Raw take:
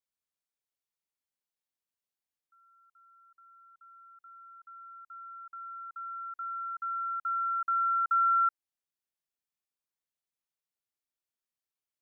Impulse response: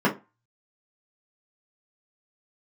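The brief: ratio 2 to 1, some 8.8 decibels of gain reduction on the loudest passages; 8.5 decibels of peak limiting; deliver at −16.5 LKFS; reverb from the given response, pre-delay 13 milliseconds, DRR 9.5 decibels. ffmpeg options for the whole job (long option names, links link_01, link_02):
-filter_complex "[0:a]acompressor=threshold=-40dB:ratio=2,alimiter=level_in=12.5dB:limit=-24dB:level=0:latency=1,volume=-12.5dB,asplit=2[link_01][link_02];[1:a]atrim=start_sample=2205,adelay=13[link_03];[link_02][link_03]afir=irnorm=-1:irlink=0,volume=-25.5dB[link_04];[link_01][link_04]amix=inputs=2:normalize=0,volume=25dB"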